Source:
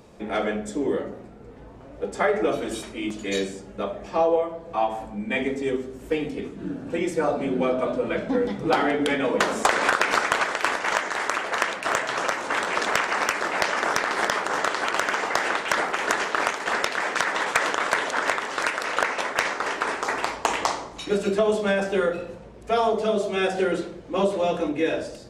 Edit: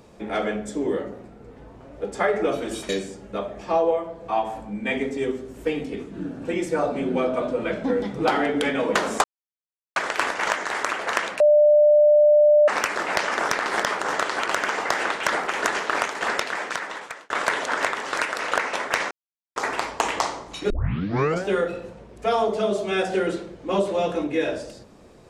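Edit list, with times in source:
2.89–3.34 cut
9.69–10.41 mute
11.85–13.13 bleep 596 Hz -11.5 dBFS
16.79–17.75 fade out
19.56–20.01 mute
21.15 tape start 0.75 s

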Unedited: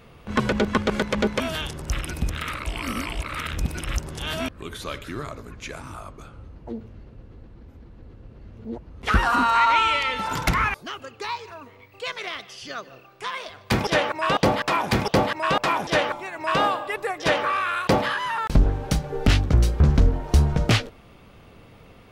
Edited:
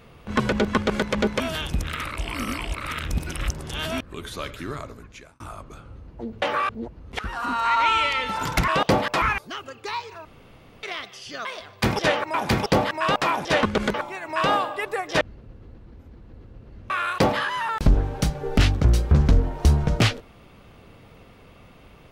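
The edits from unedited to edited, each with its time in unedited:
0.75–1.06 copy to 16.05
1.7–2.18 cut
5.3–5.88 fade out
6.9–8.59 swap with 17.32–17.59
9.09–9.86 fade in, from -17 dB
11.61–12.19 room tone
12.81–13.33 cut
14.22–14.76 move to 10.58

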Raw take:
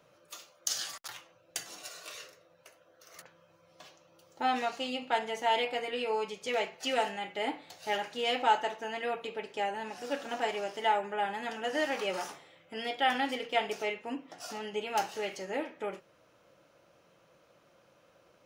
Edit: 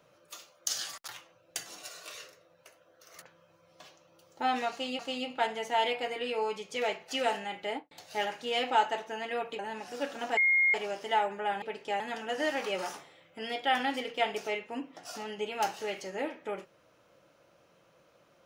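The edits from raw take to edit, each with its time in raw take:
4.71–4.99 loop, 2 plays
7.38–7.63 studio fade out
9.31–9.69 move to 11.35
10.47 add tone 2140 Hz -21.5 dBFS 0.37 s

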